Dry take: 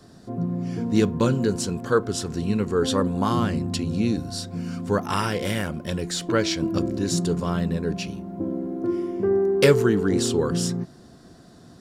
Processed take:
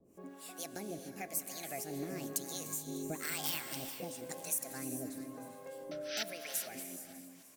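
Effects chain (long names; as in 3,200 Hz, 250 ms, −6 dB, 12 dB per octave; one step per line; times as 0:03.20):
source passing by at 0:04.65, 6 m/s, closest 8.2 metres
first-order pre-emphasis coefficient 0.9
notch filter 590 Hz, Q 12
dynamic equaliser 3,000 Hz, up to −5 dB, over −59 dBFS, Q 3.7
downward compressor 2.5 to 1, threshold −53 dBFS, peak gain reduction 14 dB
sound drawn into the spectrogram noise, 0:09.22–0:09.72, 830–4,000 Hz −43 dBFS
change of speed 1.56×
two-band tremolo in antiphase 1 Hz, depth 100%, crossover 640 Hz
repeating echo 300 ms, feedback 57%, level −16.5 dB
reverb whose tail is shaped and stops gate 470 ms rising, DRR 8 dB
level +16 dB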